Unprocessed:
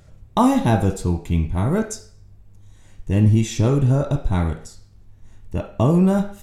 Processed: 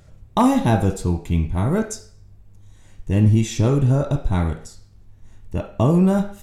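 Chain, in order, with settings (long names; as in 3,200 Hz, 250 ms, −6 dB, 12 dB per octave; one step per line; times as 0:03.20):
gain into a clipping stage and back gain 6.5 dB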